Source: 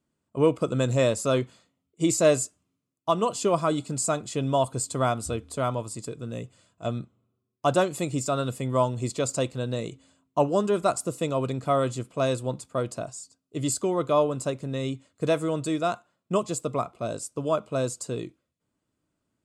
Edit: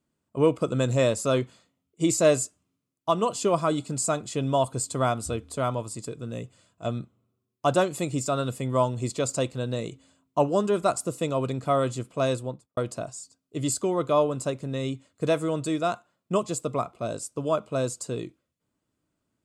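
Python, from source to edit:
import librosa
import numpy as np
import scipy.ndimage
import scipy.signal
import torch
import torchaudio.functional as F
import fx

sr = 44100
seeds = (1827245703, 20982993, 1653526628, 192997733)

y = fx.studio_fade_out(x, sr, start_s=12.31, length_s=0.46)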